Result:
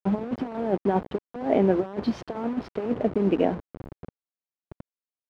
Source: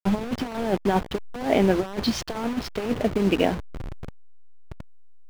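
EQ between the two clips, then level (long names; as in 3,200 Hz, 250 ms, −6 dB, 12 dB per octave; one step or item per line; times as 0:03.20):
resonant band-pass 380 Hz, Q 0.51
0.0 dB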